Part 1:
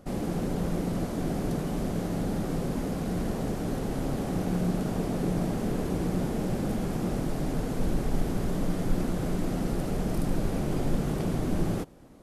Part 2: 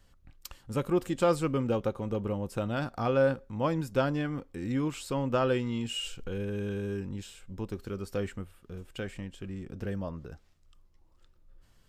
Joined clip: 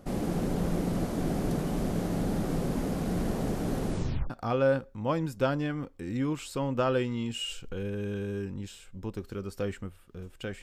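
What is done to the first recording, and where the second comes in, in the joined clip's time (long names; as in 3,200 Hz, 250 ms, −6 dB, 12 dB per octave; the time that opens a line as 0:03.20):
part 1
0:03.85: tape stop 0.45 s
0:04.30: continue with part 2 from 0:02.85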